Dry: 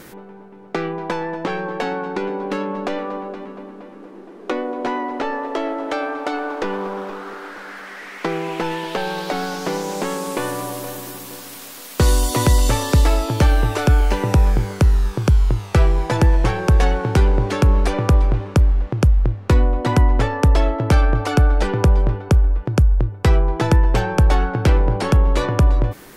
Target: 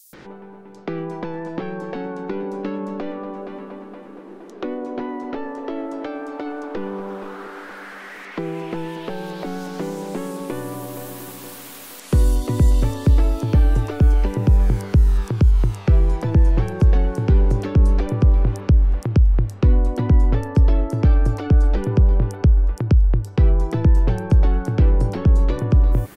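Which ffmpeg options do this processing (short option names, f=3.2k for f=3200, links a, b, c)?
-filter_complex "[0:a]acrossover=split=420[a][b];[b]acompressor=threshold=-33dB:ratio=10[c];[a][c]amix=inputs=2:normalize=0,acrossover=split=5500[d][e];[d]adelay=130[f];[f][e]amix=inputs=2:normalize=0"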